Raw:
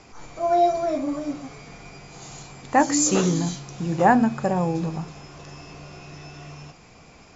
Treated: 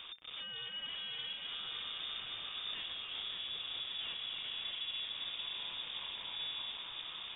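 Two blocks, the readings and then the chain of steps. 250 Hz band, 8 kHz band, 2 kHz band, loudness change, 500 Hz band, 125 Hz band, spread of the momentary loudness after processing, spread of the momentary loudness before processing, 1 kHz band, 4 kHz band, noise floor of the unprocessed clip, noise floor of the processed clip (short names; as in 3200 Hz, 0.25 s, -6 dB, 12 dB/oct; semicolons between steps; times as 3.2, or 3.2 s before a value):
under -40 dB, n/a, -13.0 dB, -17.0 dB, -35.5 dB, -36.0 dB, 3 LU, 23 LU, -29.5 dB, +4.5 dB, -50 dBFS, -47 dBFS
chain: low shelf 130 Hz +6.5 dB; compressor 2.5:1, threshold -32 dBFS, peak gain reduction 13.5 dB; tube stage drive 47 dB, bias 0.5; on a send: echo with dull and thin repeats by turns 0.286 s, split 1200 Hz, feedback 83%, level -2 dB; on the sum: inverted band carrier 3600 Hz; gain +2.5 dB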